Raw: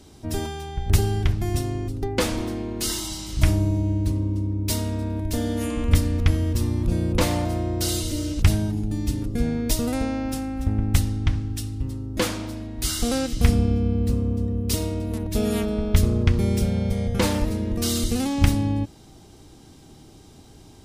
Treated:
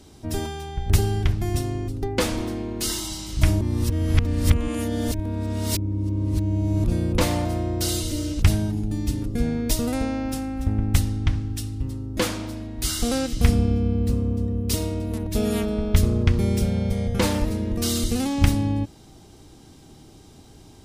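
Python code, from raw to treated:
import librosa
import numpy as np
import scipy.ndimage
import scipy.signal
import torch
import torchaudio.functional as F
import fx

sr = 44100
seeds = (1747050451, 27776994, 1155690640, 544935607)

y = fx.edit(x, sr, fx.reverse_span(start_s=3.61, length_s=3.23), tone=tone)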